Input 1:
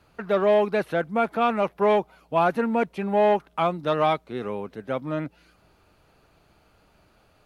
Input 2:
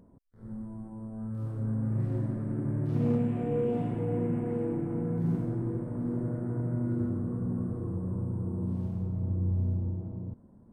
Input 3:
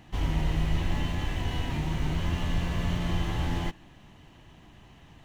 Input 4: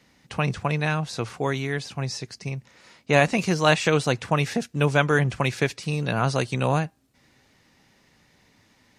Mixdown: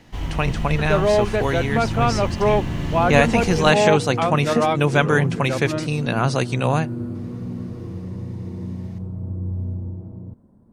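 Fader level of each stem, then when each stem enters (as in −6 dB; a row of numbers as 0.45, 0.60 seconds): +1.5, +2.0, +1.0, +2.5 decibels; 0.60, 0.00, 0.00, 0.00 seconds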